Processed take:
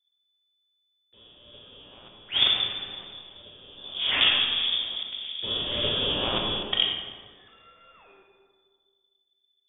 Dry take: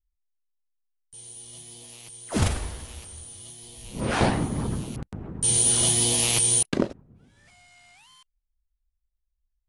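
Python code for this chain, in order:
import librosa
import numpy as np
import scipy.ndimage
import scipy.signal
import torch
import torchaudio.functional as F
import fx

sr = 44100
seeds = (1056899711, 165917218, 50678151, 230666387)

y = fx.freq_invert(x, sr, carrier_hz=3500)
y = fx.rev_freeverb(y, sr, rt60_s=1.8, hf_ratio=0.4, predelay_ms=5, drr_db=1.0)
y = F.gain(torch.from_numpy(y), -1.0).numpy()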